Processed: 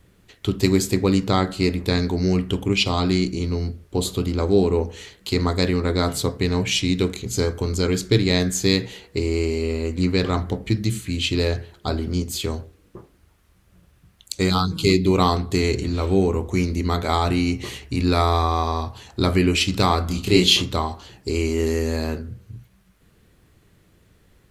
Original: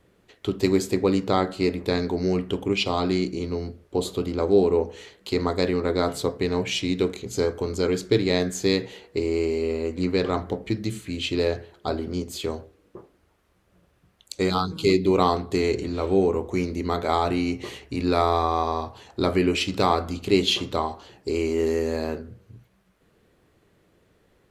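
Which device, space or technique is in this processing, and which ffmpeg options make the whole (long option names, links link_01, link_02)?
smiley-face EQ: -filter_complex "[0:a]lowshelf=frequency=170:gain=7.5,equalizer=frequency=510:width_type=o:width=1.9:gain=-6,highshelf=frequency=5600:gain=6,asettb=1/sr,asplit=3[link_01][link_02][link_03];[link_01]atrim=end=20.074[link_04];[link_02]atrim=start=20.07:end=20.62,asetpts=PTS-STARTPTS,afade=type=in:duration=0.004:curve=qsin,afade=type=out:start_time=0.546:duration=0.004:curve=qsin,asplit=2[link_05][link_06];[link_06]adelay=28,volume=-2.5dB[link_07];[link_05][link_07]amix=inputs=2:normalize=0,atrim=end_sample=24255[link_08];[link_03]atrim=start=20.616[link_09];[link_04][link_08]acrossfade=duration=0.004:curve1=hsin:curve2=qsin[link_10];[link_10][link_09]acrossfade=duration=0.004:curve1=qsin:curve2=hsin,volume=4dB"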